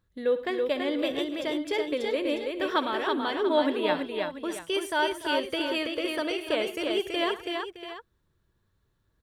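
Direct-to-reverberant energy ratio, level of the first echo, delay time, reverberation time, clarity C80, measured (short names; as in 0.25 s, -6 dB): none, -15.5 dB, 63 ms, none, none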